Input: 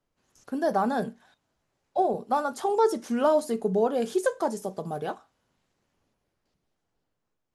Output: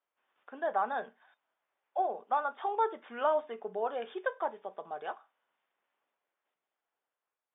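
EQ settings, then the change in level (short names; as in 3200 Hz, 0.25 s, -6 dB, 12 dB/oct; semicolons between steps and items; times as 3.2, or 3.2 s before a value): HPF 820 Hz 12 dB/oct; brick-wall FIR low-pass 3700 Hz; air absorption 280 m; 0.0 dB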